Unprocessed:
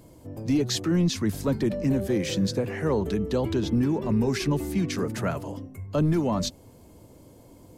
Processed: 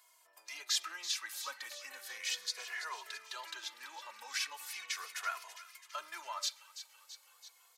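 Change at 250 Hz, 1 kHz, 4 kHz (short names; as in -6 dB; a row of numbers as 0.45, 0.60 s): under -40 dB, -7.5 dB, -2.5 dB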